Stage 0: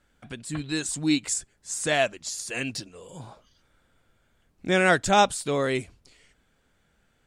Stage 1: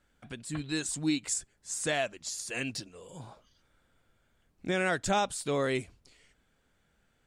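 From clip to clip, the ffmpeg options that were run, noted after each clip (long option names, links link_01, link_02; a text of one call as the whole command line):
ffmpeg -i in.wav -af "alimiter=limit=-14.5dB:level=0:latency=1:release=190,volume=-4dB" out.wav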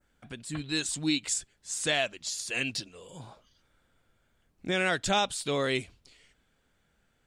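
ffmpeg -i in.wav -af "adynamicequalizer=threshold=0.00355:dfrequency=3400:dqfactor=1.1:tfrequency=3400:tqfactor=1.1:attack=5:release=100:ratio=0.375:range=4:mode=boostabove:tftype=bell" out.wav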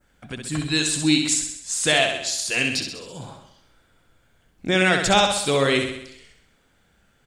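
ffmpeg -i in.wav -af "aecho=1:1:65|130|195|260|325|390|455:0.501|0.281|0.157|0.088|0.0493|0.0276|0.0155,volume=8dB" out.wav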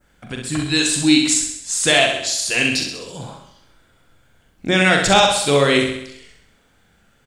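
ffmpeg -i in.wav -filter_complex "[0:a]asplit=2[link_01][link_02];[link_02]adelay=42,volume=-6.5dB[link_03];[link_01][link_03]amix=inputs=2:normalize=0,volume=3.5dB" out.wav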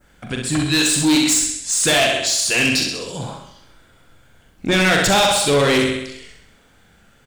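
ffmpeg -i in.wav -af "asoftclip=type=tanh:threshold=-16dB,volume=4.5dB" out.wav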